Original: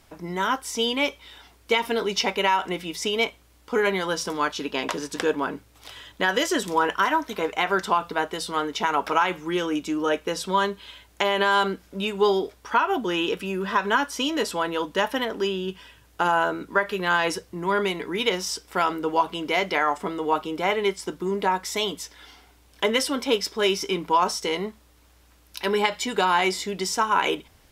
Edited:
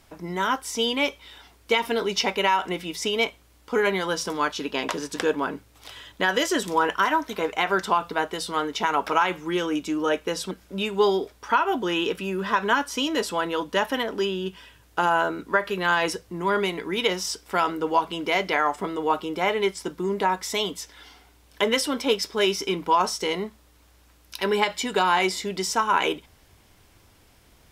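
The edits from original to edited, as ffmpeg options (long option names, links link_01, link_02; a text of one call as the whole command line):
ffmpeg -i in.wav -filter_complex "[0:a]asplit=2[link_01][link_02];[link_01]atrim=end=10.512[link_03];[link_02]atrim=start=11.728[link_04];[link_03][link_04]acrossfade=duration=0.004:curve1=hsin:curve2=hsin" out.wav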